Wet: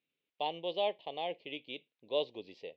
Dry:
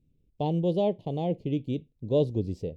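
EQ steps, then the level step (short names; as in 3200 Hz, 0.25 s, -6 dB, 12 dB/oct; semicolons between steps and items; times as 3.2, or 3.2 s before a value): HPF 860 Hz 12 dB/oct; LPF 4000 Hz 24 dB/oct; bell 2400 Hz +8.5 dB 2.1 oct; 0.0 dB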